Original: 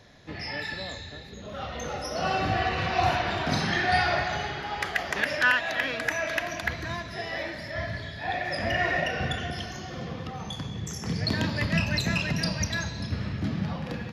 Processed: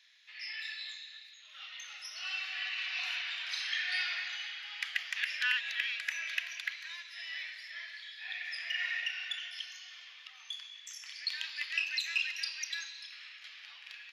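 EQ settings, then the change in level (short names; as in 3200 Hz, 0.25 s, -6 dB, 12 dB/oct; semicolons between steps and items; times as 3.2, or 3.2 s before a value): ladder high-pass 2100 Hz, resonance 35%; high shelf 3700 Hz -9 dB; +6.0 dB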